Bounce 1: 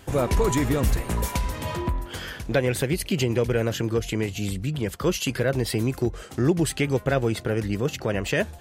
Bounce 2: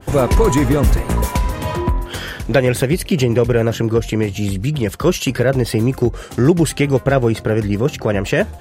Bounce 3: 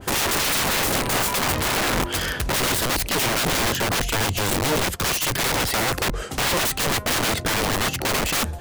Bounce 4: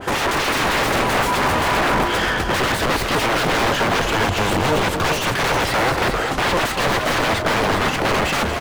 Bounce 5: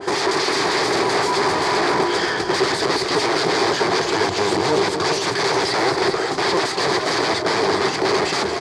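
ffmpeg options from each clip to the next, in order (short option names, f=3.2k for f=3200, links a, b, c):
-af "adynamicequalizer=threshold=0.00891:dfrequency=1800:dqfactor=0.7:tfrequency=1800:tqfactor=0.7:attack=5:release=100:ratio=0.375:range=3:mode=cutabove:tftype=highshelf,volume=8.5dB"
-af "aeval=exprs='(mod(8.41*val(0)+1,2)-1)/8.41':c=same,volume=1.5dB"
-filter_complex "[0:a]asplit=2[a][b];[b]highpass=f=720:p=1,volume=17dB,asoftclip=type=tanh:threshold=-16.5dB[c];[a][c]amix=inputs=2:normalize=0,lowpass=f=1.7k:p=1,volume=-6dB,asplit=2[d][e];[e]aecho=0:1:236|400:0.355|0.473[f];[d][f]amix=inputs=2:normalize=0,volume=4dB"
-af "highpass=170,equalizer=f=230:t=q:w=4:g=-9,equalizer=f=390:t=q:w=4:g=10,equalizer=f=550:t=q:w=4:g=-6,equalizer=f=1.4k:t=q:w=4:g=-5,equalizer=f=2.8k:t=q:w=4:g=-9,equalizer=f=4.7k:t=q:w=4:g=9,lowpass=f=8.9k:w=0.5412,lowpass=f=8.9k:w=1.3066"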